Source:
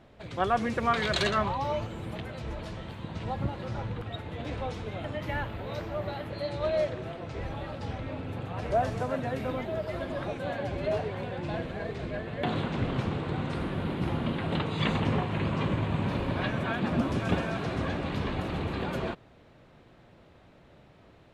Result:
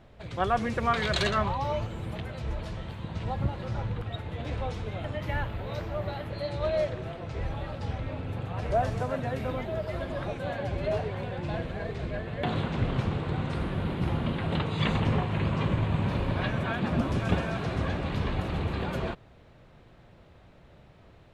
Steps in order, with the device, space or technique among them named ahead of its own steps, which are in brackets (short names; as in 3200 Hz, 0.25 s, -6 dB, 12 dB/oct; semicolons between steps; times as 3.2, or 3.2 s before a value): low shelf boost with a cut just above (low shelf 94 Hz +8 dB; bell 280 Hz -3 dB 0.72 oct)